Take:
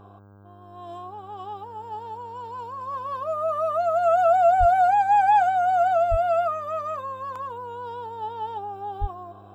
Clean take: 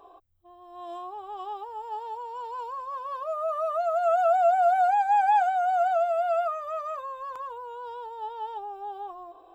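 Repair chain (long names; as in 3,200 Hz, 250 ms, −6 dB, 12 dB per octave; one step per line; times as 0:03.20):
hum removal 100.4 Hz, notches 16
high-pass at the plosives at 0:04.59/0:06.10/0:09.00
level 0 dB, from 0:02.81 −3.5 dB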